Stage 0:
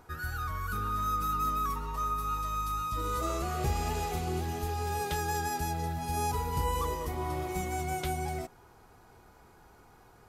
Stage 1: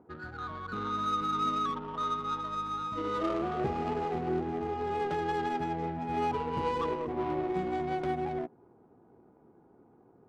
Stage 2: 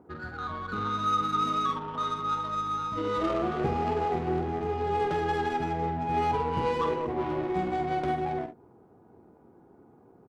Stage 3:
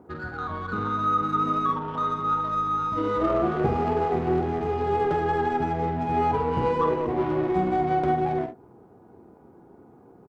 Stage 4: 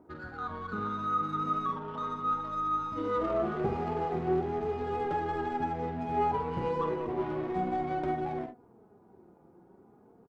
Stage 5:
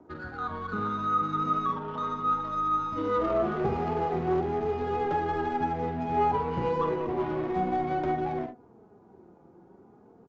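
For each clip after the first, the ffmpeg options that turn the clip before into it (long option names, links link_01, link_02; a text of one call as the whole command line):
ffmpeg -i in.wav -af "highpass=180,equalizer=frequency=290:width=1.2:gain=5.5,adynamicsmooth=sensitivity=2.5:basefreq=510,volume=2dB" out.wav
ffmpeg -i in.wav -filter_complex "[0:a]equalizer=frequency=81:width=1.5:gain=3,asplit=2[link_01][link_02];[link_02]aecho=0:1:47|70:0.422|0.168[link_03];[link_01][link_03]amix=inputs=2:normalize=0,volume=3dB" out.wav
ffmpeg -i in.wav -filter_complex "[0:a]acrossover=split=1800[link_01][link_02];[link_01]asplit=2[link_03][link_04];[link_04]adelay=32,volume=-11dB[link_05];[link_03][link_05]amix=inputs=2:normalize=0[link_06];[link_02]acompressor=threshold=-52dB:ratio=6[link_07];[link_06][link_07]amix=inputs=2:normalize=0,volume=4.5dB" out.wav
ffmpeg -i in.wav -af "flanger=delay=3.1:depth=2.8:regen=54:speed=0.37:shape=triangular,volume=-3dB" out.wav
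ffmpeg -i in.wav -filter_complex "[0:a]acrossover=split=160|410|1100[link_01][link_02][link_03][link_04];[link_02]volume=34dB,asoftclip=hard,volume=-34dB[link_05];[link_01][link_05][link_03][link_04]amix=inputs=4:normalize=0,aresample=16000,aresample=44100,volume=3.5dB" out.wav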